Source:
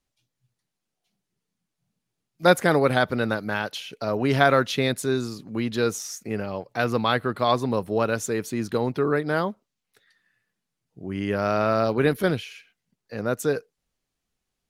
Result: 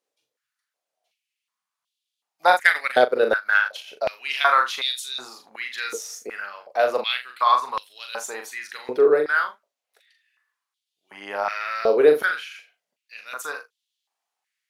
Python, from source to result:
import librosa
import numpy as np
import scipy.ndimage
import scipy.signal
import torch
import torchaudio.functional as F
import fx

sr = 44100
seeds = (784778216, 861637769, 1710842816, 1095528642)

y = fx.room_early_taps(x, sr, ms=(40, 80), db=(-5.5, -17.0))
y = fx.transient(y, sr, attack_db=10, sustain_db=-11, at=(2.53, 3.88))
y = fx.filter_held_highpass(y, sr, hz=2.7, low_hz=460.0, high_hz=3400.0)
y = y * librosa.db_to_amplitude(-2.5)